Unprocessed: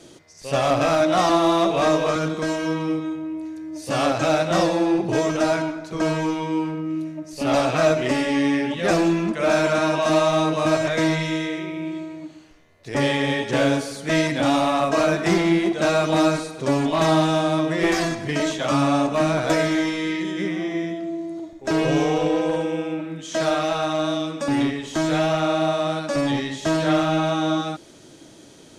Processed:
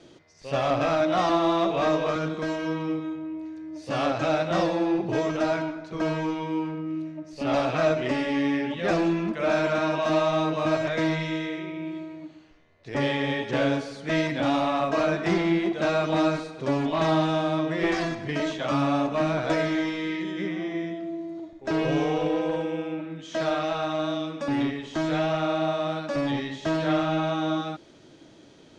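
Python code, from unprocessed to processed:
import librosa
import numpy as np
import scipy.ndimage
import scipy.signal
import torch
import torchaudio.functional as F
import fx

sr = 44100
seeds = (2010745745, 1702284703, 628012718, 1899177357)

y = scipy.signal.sosfilt(scipy.signal.butter(2, 4400.0, 'lowpass', fs=sr, output='sos'), x)
y = y * 10.0 ** (-4.5 / 20.0)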